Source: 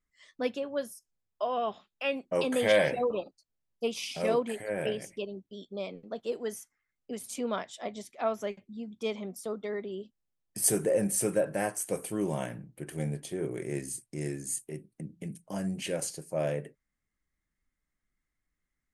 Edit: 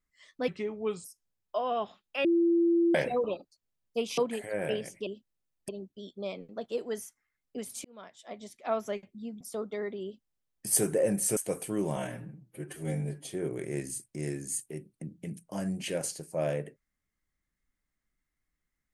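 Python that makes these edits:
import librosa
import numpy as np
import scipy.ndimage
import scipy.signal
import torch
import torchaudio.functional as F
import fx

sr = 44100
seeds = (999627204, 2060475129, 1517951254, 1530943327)

y = fx.edit(x, sr, fx.speed_span(start_s=0.48, length_s=0.43, speed=0.76),
    fx.bleep(start_s=2.11, length_s=0.7, hz=339.0, db=-21.0),
    fx.cut(start_s=4.04, length_s=0.3),
    fx.fade_in_span(start_s=7.39, length_s=0.93),
    fx.cut(start_s=8.95, length_s=0.37),
    fx.duplicate(start_s=9.95, length_s=0.62, to_s=5.23),
    fx.cut(start_s=11.28, length_s=0.51),
    fx.stretch_span(start_s=12.39, length_s=0.88, factor=1.5), tone=tone)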